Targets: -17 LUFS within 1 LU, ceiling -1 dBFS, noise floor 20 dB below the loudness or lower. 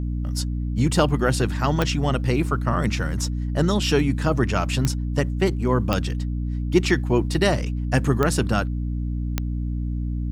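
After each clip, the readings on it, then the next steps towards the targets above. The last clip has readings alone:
clicks found 5; hum 60 Hz; highest harmonic 300 Hz; hum level -23 dBFS; loudness -23.0 LUFS; peak level -3.5 dBFS; loudness target -17.0 LUFS
-> de-click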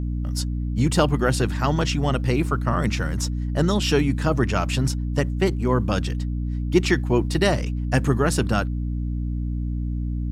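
clicks found 0; hum 60 Hz; highest harmonic 300 Hz; hum level -23 dBFS
-> hum notches 60/120/180/240/300 Hz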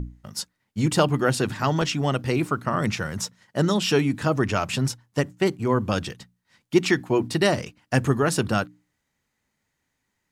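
hum not found; loudness -24.0 LUFS; peak level -5.0 dBFS; loudness target -17.0 LUFS
-> trim +7 dB; peak limiter -1 dBFS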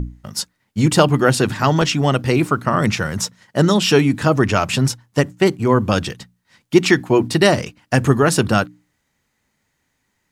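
loudness -17.5 LUFS; peak level -1.0 dBFS; noise floor -70 dBFS

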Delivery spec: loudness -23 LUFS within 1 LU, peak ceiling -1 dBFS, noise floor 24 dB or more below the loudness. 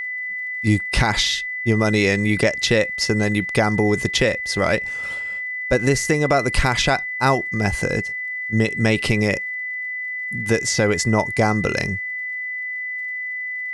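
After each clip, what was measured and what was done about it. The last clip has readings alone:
tick rate 54 per s; steady tone 2 kHz; tone level -25 dBFS; loudness -20.5 LUFS; peak level -4.5 dBFS; loudness target -23.0 LUFS
-> de-click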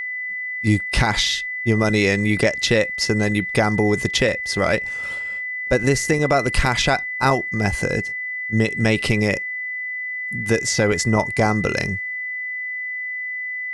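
tick rate 1.0 per s; steady tone 2 kHz; tone level -25 dBFS
-> band-stop 2 kHz, Q 30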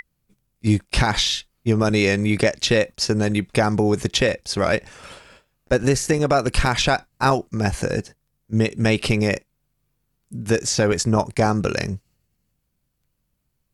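steady tone not found; loudness -21.0 LUFS; peak level -5.0 dBFS; loudness target -23.0 LUFS
-> trim -2 dB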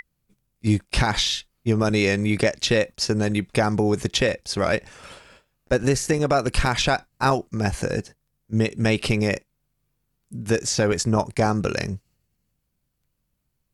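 loudness -23.0 LUFS; peak level -7.0 dBFS; noise floor -75 dBFS

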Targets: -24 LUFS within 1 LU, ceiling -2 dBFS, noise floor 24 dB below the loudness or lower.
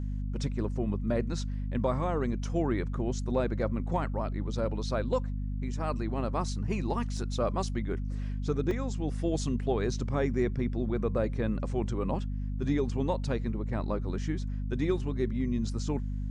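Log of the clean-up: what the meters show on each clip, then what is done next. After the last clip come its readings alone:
dropouts 2; longest dropout 2.6 ms; hum 50 Hz; highest harmonic 250 Hz; hum level -30 dBFS; loudness -32.0 LUFS; peak level -16.0 dBFS; loudness target -24.0 LUFS
-> interpolate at 7.17/8.71 s, 2.6 ms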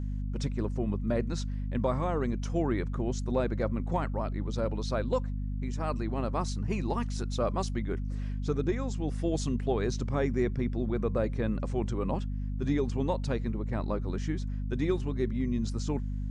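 dropouts 0; hum 50 Hz; highest harmonic 250 Hz; hum level -30 dBFS
-> de-hum 50 Hz, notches 5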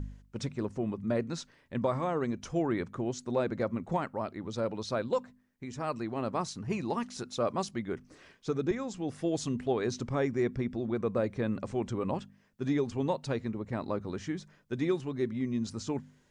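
hum not found; loudness -33.5 LUFS; peak level -18.0 dBFS; loudness target -24.0 LUFS
-> trim +9.5 dB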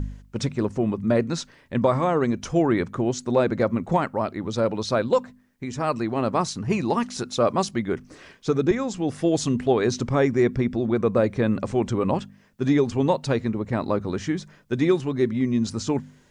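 loudness -24.0 LUFS; peak level -8.5 dBFS; noise floor -55 dBFS

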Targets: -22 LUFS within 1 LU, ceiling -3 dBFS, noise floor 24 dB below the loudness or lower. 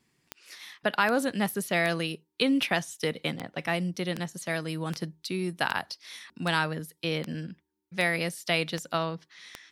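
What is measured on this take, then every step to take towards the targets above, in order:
clicks found 13; loudness -29.5 LUFS; peak level -12.0 dBFS; loudness target -22.0 LUFS
-> de-click; trim +7.5 dB

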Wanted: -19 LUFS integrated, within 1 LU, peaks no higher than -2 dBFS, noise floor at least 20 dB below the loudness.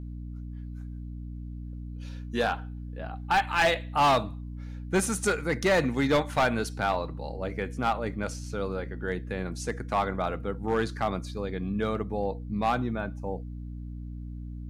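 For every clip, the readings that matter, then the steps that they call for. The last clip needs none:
clipped samples 1.0%; clipping level -18.0 dBFS; hum 60 Hz; highest harmonic 300 Hz; hum level -36 dBFS; loudness -29.0 LUFS; peak level -18.0 dBFS; loudness target -19.0 LUFS
-> clip repair -18 dBFS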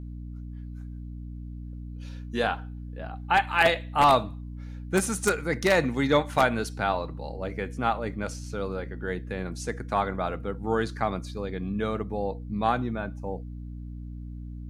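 clipped samples 0.0%; hum 60 Hz; highest harmonic 300 Hz; hum level -36 dBFS
-> hum notches 60/120/180/240/300 Hz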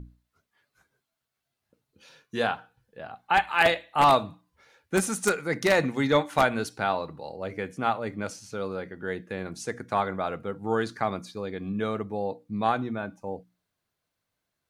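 hum not found; loudness -27.5 LUFS; peak level -8.5 dBFS; loudness target -19.0 LUFS
-> trim +8.5 dB; peak limiter -2 dBFS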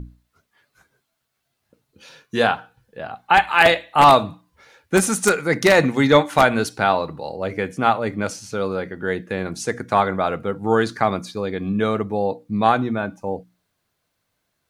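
loudness -19.5 LUFS; peak level -2.0 dBFS; noise floor -75 dBFS

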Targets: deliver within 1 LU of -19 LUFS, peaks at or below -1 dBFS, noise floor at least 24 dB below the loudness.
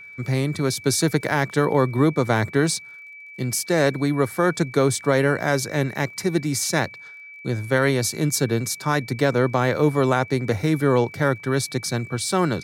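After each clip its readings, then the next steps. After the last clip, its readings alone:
tick rate 38 per s; steady tone 2.3 kHz; tone level -39 dBFS; loudness -22.0 LUFS; peak level -6.5 dBFS; loudness target -19.0 LUFS
-> de-click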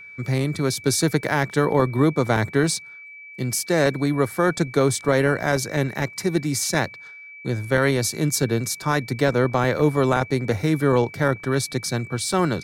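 tick rate 0.87 per s; steady tone 2.3 kHz; tone level -39 dBFS
-> band-stop 2.3 kHz, Q 30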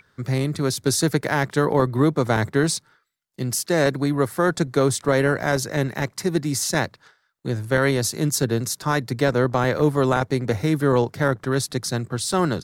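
steady tone not found; loudness -22.0 LUFS; peak level -5.5 dBFS; loudness target -19.0 LUFS
-> trim +3 dB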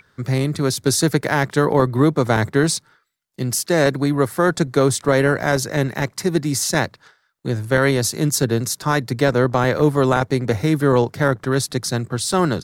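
loudness -19.0 LUFS; peak level -2.5 dBFS; noise floor -64 dBFS

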